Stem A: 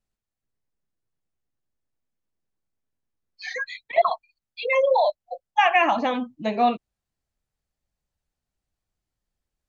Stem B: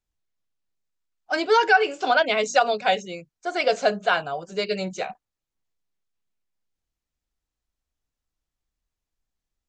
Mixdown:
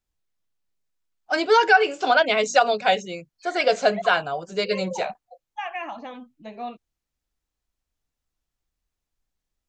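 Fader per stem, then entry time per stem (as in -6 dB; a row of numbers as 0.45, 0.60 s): -13.5, +1.5 dB; 0.00, 0.00 s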